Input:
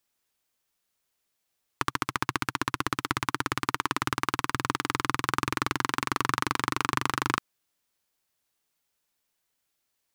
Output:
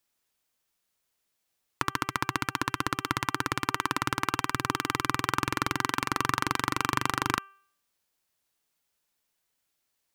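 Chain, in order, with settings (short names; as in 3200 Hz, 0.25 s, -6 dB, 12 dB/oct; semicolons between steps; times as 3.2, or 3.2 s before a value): de-hum 392.1 Hz, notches 8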